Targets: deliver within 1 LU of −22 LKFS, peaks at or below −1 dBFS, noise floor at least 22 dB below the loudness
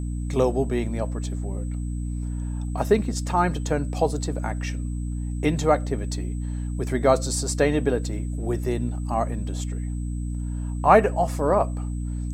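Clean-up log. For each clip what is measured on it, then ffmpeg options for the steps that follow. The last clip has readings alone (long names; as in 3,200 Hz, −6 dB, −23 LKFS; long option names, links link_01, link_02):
mains hum 60 Hz; hum harmonics up to 300 Hz; level of the hum −26 dBFS; interfering tone 8,000 Hz; level of the tone −51 dBFS; integrated loudness −25.0 LKFS; sample peak −2.5 dBFS; target loudness −22.0 LKFS
→ -af "bandreject=frequency=60:width_type=h:width=4,bandreject=frequency=120:width_type=h:width=4,bandreject=frequency=180:width_type=h:width=4,bandreject=frequency=240:width_type=h:width=4,bandreject=frequency=300:width_type=h:width=4"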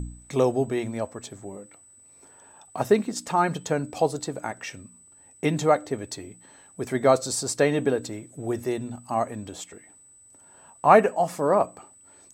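mains hum none found; interfering tone 8,000 Hz; level of the tone −51 dBFS
→ -af "bandreject=frequency=8000:width=30"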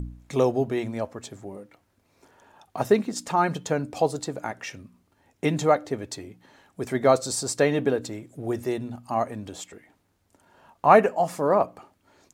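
interfering tone none found; integrated loudness −25.0 LKFS; sample peak −3.0 dBFS; target loudness −22.0 LKFS
→ -af "volume=3dB,alimiter=limit=-1dB:level=0:latency=1"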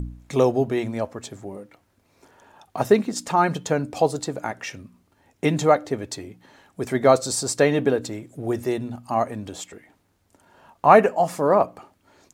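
integrated loudness −22.0 LKFS; sample peak −1.0 dBFS; background noise floor −66 dBFS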